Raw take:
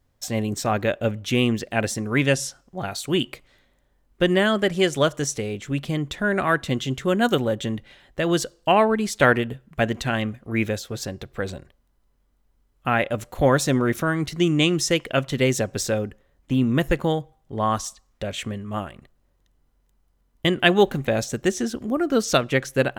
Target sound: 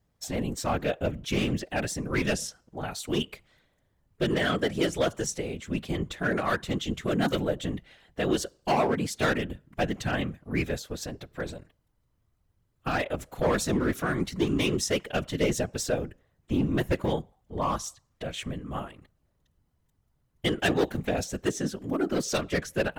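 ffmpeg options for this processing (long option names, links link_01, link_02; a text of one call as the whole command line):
ffmpeg -i in.wav -af "asoftclip=type=hard:threshold=-15dB,afftfilt=real='hypot(re,im)*cos(2*PI*random(0))':imag='hypot(re,im)*sin(2*PI*random(1))':win_size=512:overlap=0.75,volume=1dB" out.wav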